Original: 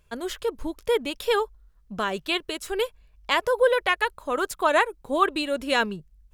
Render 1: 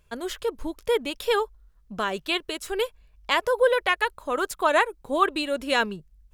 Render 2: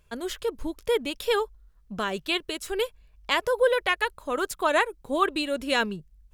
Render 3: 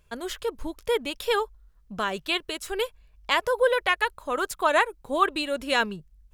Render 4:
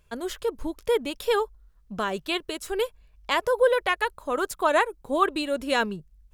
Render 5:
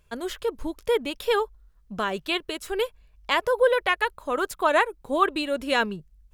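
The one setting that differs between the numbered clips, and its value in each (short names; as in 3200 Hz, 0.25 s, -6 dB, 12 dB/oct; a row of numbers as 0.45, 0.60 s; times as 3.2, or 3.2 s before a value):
dynamic EQ, frequency: 110, 930, 310, 2600, 7100 Hz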